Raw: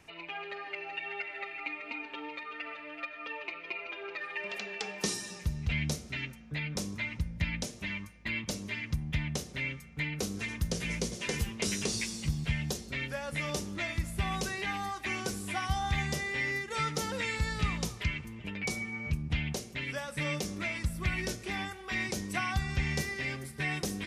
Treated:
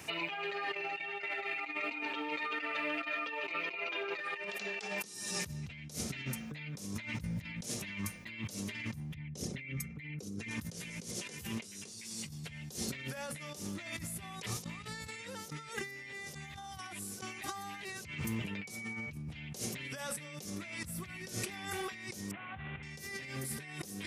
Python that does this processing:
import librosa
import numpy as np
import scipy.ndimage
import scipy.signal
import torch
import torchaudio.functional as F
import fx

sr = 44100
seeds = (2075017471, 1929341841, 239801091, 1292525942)

y = fx.envelope_sharpen(x, sr, power=1.5, at=(9.14, 10.51))
y = fx.cvsd(y, sr, bps=16000, at=(22.31, 22.83))
y = fx.edit(y, sr, fx.reverse_span(start_s=14.42, length_s=3.63), tone=tone)
y = scipy.signal.sosfilt(scipy.signal.butter(4, 84.0, 'highpass', fs=sr, output='sos'), y)
y = fx.high_shelf(y, sr, hz=6800.0, db=12.0)
y = fx.over_compress(y, sr, threshold_db=-44.0, ratio=-1.0)
y = F.gain(torch.from_numpy(y), 1.5).numpy()